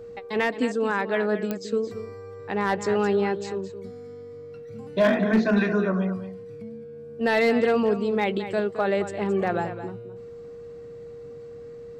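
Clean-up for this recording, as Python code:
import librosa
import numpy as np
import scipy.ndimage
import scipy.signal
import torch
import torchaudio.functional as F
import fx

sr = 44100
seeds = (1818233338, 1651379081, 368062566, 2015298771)

y = fx.fix_declip(x, sr, threshold_db=-13.5)
y = fx.fix_declick_ar(y, sr, threshold=10.0)
y = fx.notch(y, sr, hz=470.0, q=30.0)
y = fx.fix_echo_inverse(y, sr, delay_ms=218, level_db=-11.5)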